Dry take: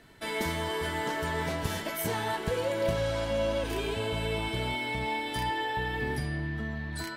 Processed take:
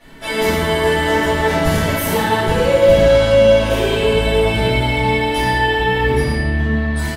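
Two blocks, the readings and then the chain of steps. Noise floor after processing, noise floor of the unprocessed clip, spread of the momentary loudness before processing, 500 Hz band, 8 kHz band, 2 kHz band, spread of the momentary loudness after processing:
−22 dBFS, −38 dBFS, 4 LU, +18.0 dB, +12.0 dB, +14.5 dB, 7 LU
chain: on a send: single-tap delay 111 ms −9 dB
on the sum: rectangular room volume 280 cubic metres, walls mixed, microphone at 6.3 metres
level −1 dB

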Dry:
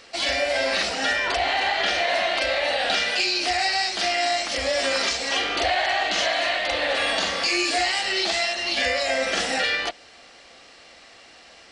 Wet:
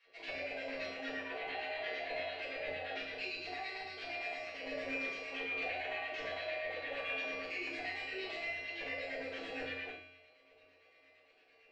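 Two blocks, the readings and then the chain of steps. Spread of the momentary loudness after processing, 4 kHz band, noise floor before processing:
4 LU, −23.5 dB, −49 dBFS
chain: high-shelf EQ 4,000 Hz −9 dB
auto-filter band-pass square 8.8 Hz 460–2,400 Hz
tuned comb filter 89 Hz, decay 0.94 s, harmonics odd, mix 90%
rectangular room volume 240 cubic metres, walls furnished, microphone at 5.3 metres
level −3 dB

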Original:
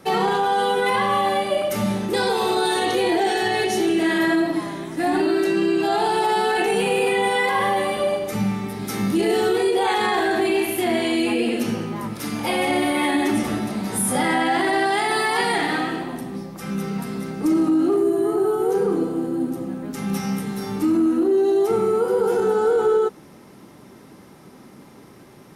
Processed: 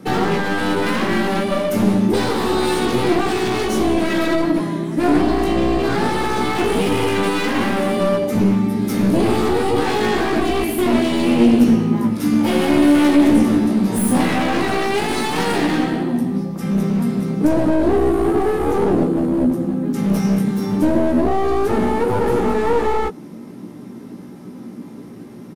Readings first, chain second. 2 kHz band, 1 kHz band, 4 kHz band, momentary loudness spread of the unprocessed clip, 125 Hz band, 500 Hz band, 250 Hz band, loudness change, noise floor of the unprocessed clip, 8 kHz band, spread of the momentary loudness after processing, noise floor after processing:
0.0 dB, 0.0 dB, +0.5 dB, 8 LU, +9.0 dB, +1.5 dB, +6.5 dB, +3.5 dB, −46 dBFS, 0.0 dB, 7 LU, −36 dBFS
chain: wavefolder on the positive side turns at −23 dBFS
parametric band 230 Hz +14 dB 1.7 octaves
double-tracking delay 17 ms −5 dB
level −1 dB

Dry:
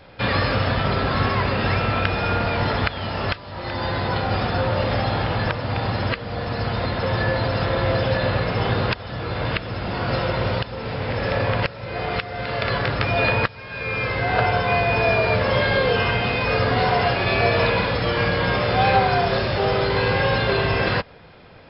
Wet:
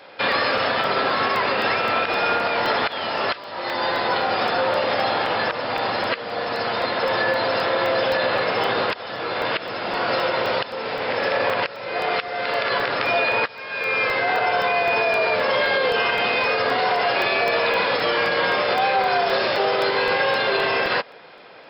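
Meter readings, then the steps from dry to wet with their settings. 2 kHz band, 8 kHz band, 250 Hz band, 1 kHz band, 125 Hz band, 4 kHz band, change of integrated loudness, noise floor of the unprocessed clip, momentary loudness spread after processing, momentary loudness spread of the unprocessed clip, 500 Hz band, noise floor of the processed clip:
+2.0 dB, can't be measured, −5.5 dB, +2.0 dB, −17.5 dB, +2.5 dB, +0.5 dB, −38 dBFS, 6 LU, 8 LU, +1.0 dB, −37 dBFS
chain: high-pass filter 400 Hz 12 dB per octave
brickwall limiter −16 dBFS, peak gain reduction 10.5 dB
regular buffer underruns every 0.26 s, samples 64, zero, from 0:00.32
level +4.5 dB

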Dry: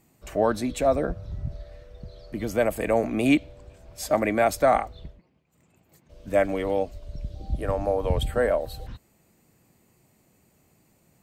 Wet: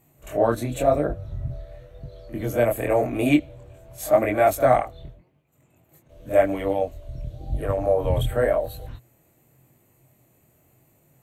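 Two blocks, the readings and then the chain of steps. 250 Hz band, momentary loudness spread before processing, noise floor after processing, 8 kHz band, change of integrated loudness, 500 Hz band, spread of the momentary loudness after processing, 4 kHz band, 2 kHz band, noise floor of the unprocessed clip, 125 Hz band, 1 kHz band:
+1.0 dB, 17 LU, −62 dBFS, 0.0 dB, +2.5 dB, +3.0 dB, 17 LU, −1.5 dB, 0.0 dB, −64 dBFS, +4.0 dB, +2.0 dB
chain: thirty-one-band graphic EQ 125 Hz +10 dB, 200 Hz −6 dB, 315 Hz +3 dB, 630 Hz +5 dB, 5,000 Hz −12 dB, 12,500 Hz +9 dB
echo ahead of the sound 47 ms −15.5 dB
chorus effect 0.91 Hz, delay 20 ms, depth 6.2 ms
level +3 dB

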